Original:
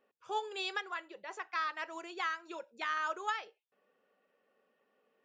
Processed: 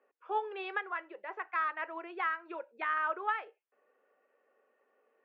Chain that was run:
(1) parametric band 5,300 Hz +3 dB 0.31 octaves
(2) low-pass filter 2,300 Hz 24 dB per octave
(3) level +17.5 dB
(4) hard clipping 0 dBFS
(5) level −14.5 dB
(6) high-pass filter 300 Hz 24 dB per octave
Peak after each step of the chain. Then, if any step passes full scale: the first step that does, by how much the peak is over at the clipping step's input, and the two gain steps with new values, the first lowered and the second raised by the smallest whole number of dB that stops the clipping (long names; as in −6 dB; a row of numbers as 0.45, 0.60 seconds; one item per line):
−24.0, −23.0, −5.5, −5.5, −20.0, −20.0 dBFS
no step passes full scale